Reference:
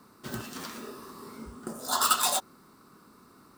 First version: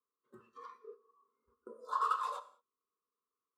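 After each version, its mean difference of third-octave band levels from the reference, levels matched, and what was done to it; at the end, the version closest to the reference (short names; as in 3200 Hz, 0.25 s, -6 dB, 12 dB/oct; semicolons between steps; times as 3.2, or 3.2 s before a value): 18.5 dB: spectral noise reduction 17 dB; gate -48 dBFS, range -14 dB; double band-pass 720 Hz, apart 1.2 oct; non-linear reverb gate 0.23 s falling, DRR 11.5 dB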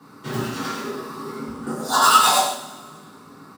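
4.5 dB: HPF 93 Hz 24 dB/oct; high shelf 6900 Hz -10 dB; on a send: echo 96 ms -7.5 dB; on the sum: two-slope reverb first 0.52 s, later 1.8 s, from -18 dB, DRR -9.5 dB; gain +1.5 dB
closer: second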